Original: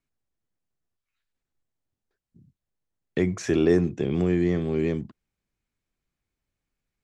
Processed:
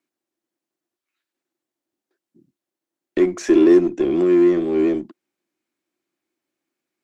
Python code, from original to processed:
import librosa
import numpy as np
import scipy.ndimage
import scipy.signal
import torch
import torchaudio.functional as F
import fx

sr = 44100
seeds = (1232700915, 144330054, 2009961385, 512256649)

p1 = fx.highpass_res(x, sr, hz=340.0, q=4.2)
p2 = fx.peak_eq(p1, sr, hz=440.0, db=-12.5, octaves=0.24)
p3 = fx.clip_asym(p2, sr, top_db=-31.5, bottom_db=-18.0)
y = p2 + (p3 * librosa.db_to_amplitude(-6.0))